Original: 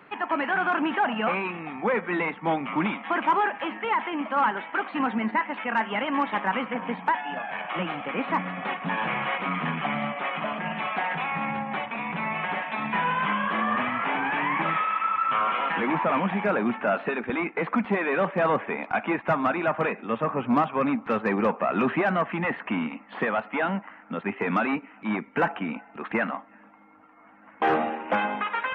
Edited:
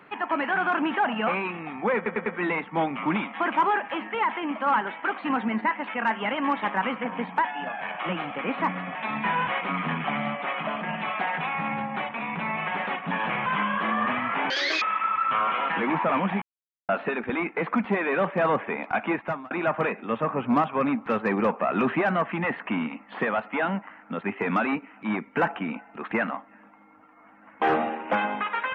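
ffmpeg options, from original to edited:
-filter_complex "[0:a]asplit=13[a][b][c][d][e][f][g][h][i][j][k][l][m];[a]atrim=end=2.062[n];[b]atrim=start=1.958:end=2.062[o];[c]atrim=start=1.958:end=2.062[p];[d]atrim=start=1.958:end=8.652[q];[e]atrim=start=12.638:end=13.162[r];[f]atrim=start=9.238:end=12.642[s];[g]atrim=start=8.648:end=9.242[t];[h]atrim=start=13.158:end=14.204[u];[i]atrim=start=14.2:end=14.82,asetpts=PTS-STARTPTS,asetrate=85995,aresample=44100[v];[j]atrim=start=14.816:end=16.42,asetpts=PTS-STARTPTS,afade=t=out:st=1.6:d=0.004:c=hsin[w];[k]atrim=start=16.42:end=16.89,asetpts=PTS-STARTPTS,volume=0[x];[l]atrim=start=16.89:end=19.51,asetpts=PTS-STARTPTS,afade=t=in:d=0.004:c=hsin,afade=t=out:st=2.24:d=0.38[y];[m]atrim=start=19.51,asetpts=PTS-STARTPTS,afade=t=in:d=0.004:c=hsin[z];[n][o]acrossfade=d=0.004:c1=hsin:c2=hsin[aa];[aa][p]acrossfade=d=0.004:c1=hsin:c2=hsin[ab];[ab][q]acrossfade=d=0.004:c1=hsin:c2=hsin[ac];[ac][r]acrossfade=d=0.004:c1=hsin:c2=hsin[ad];[ad][s]acrossfade=d=0.004:c1=hsin:c2=hsin[ae];[ae][t]acrossfade=d=0.004:c1=hsin:c2=hsin[af];[af][u]acrossfade=d=0.004:c1=hsin:c2=hsin[ag];[ag][v]acrossfade=d=0.004:c1=hsin:c2=hsin[ah];[w][x][y][z]concat=n=4:v=0:a=1[ai];[ah][ai]acrossfade=d=0.004:c1=hsin:c2=hsin"

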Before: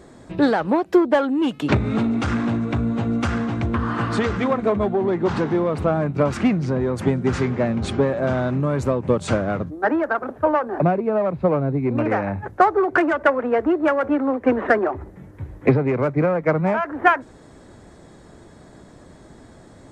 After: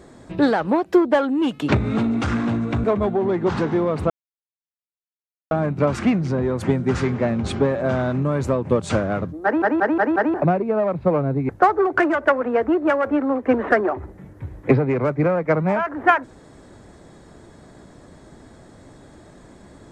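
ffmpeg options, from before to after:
-filter_complex "[0:a]asplit=9[a][b][c][d][e][f][g][h][i];[a]atrim=end=2.842[j];[b]atrim=start=4.628:end=5.89,asetpts=PTS-STARTPTS,afade=t=out:st=1.258:d=0.004:c=hsin,apad=pad_dur=1.41[k];[c]atrim=start=5.89:end=10.002,asetpts=PTS-STARTPTS,afade=t=in:d=0.004:c=hsin[l];[d]atrim=start=9.818:end=10.002[m];[e]atrim=start=9.818:end=10.002[n];[f]atrim=start=9.818:end=10.002[o];[g]atrim=start=9.818:end=10.002[p];[h]atrim=start=10.718:end=11.872[q];[i]atrim=start=12.468[r];[k][l]concat=n=2:v=0:a=1[s];[j][s]acrossfade=d=0.004:c1=hsin:c2=hsin[t];[t][m]acrossfade=d=0.004:c1=hsin:c2=hsin[u];[u][n]acrossfade=d=0.004:c1=hsin:c2=hsin[v];[v][o]acrossfade=d=0.004:c1=hsin:c2=hsin[w];[w][p]acrossfade=d=0.004:c1=hsin:c2=hsin[x];[x][q]acrossfade=d=0.004:c1=hsin:c2=hsin[y];[y][r]acrossfade=d=0.004:c1=hsin:c2=hsin"

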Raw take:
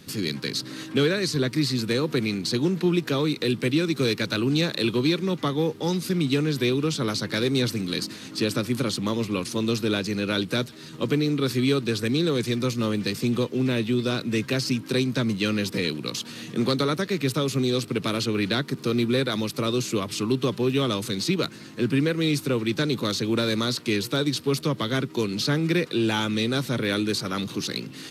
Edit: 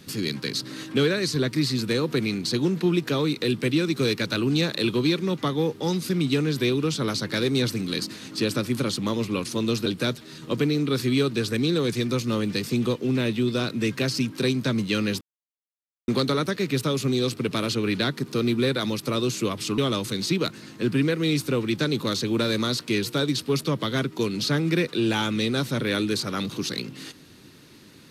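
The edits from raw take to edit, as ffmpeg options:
-filter_complex "[0:a]asplit=5[a][b][c][d][e];[a]atrim=end=9.862[f];[b]atrim=start=10.368:end=15.72,asetpts=PTS-STARTPTS,afade=t=out:st=5.348:d=0.004:c=hsin[g];[c]atrim=start=15.72:end=16.59,asetpts=PTS-STARTPTS,volume=0[h];[d]atrim=start=16.59:end=20.292,asetpts=PTS-STARTPTS,afade=t=in:d=0.004:c=hsin[i];[e]atrim=start=20.758[j];[g][h][i]concat=n=3:v=0:a=1[k];[f][k]acrossfade=d=0.004:c1=hsin:c2=hsin[l];[l][j]acrossfade=d=0.004:c1=hsin:c2=hsin"

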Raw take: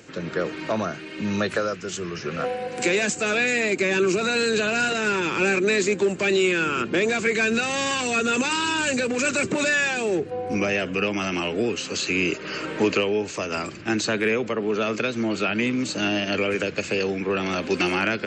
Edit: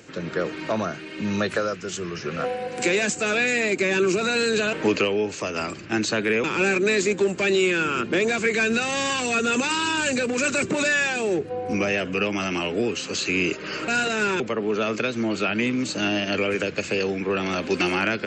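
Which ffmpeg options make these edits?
-filter_complex "[0:a]asplit=5[a][b][c][d][e];[a]atrim=end=4.732[f];[b]atrim=start=12.688:end=14.402[g];[c]atrim=start=5.248:end=12.692[h];[d]atrim=start=4.728:end=5.252[i];[e]atrim=start=14.398[j];[f][g]acrossfade=d=0.004:c1=hsin:c2=hsin[k];[k][h]acrossfade=d=0.004:c1=hsin:c2=hsin[l];[l][i]acrossfade=d=0.004:c1=hsin:c2=hsin[m];[m][j]acrossfade=d=0.004:c1=hsin:c2=hsin"

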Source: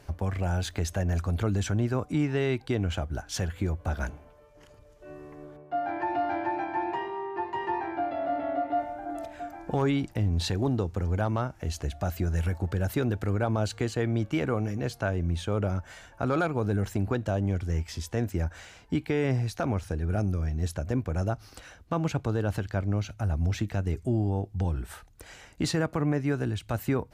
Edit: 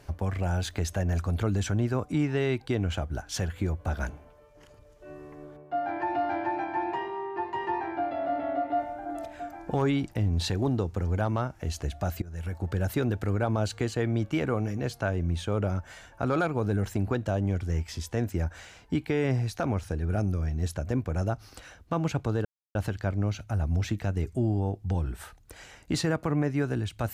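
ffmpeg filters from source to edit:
-filter_complex "[0:a]asplit=3[a][b][c];[a]atrim=end=12.22,asetpts=PTS-STARTPTS,afade=t=out:st=12.216:d=0.004:c=hsin:silence=0.0891251[d];[b]atrim=start=12.22:end=22.45,asetpts=PTS-STARTPTS,afade=t=in:d=0.53:silence=0.0891251,afade=t=out:st=10.226:d=0.004:c=hsin,apad=pad_dur=0.3[e];[c]atrim=start=22.45,asetpts=PTS-STARTPTS,afade=t=in:d=0.004:c=hsin[f];[d][e][f]concat=n=3:v=0:a=1"

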